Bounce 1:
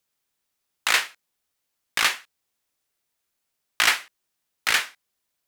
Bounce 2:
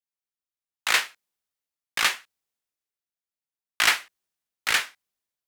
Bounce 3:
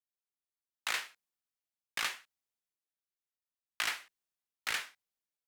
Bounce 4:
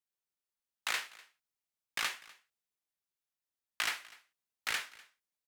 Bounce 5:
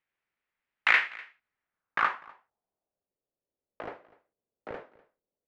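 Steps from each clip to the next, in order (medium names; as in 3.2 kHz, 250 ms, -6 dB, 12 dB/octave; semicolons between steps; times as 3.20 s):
three bands expanded up and down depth 40%; trim -2.5 dB
compression 6:1, threshold -22 dBFS, peak gain reduction 8 dB; trim -8 dB
delay 248 ms -22 dB
low-pass sweep 2.1 kHz -> 510 Hz, 1.40–3.16 s; trim +8.5 dB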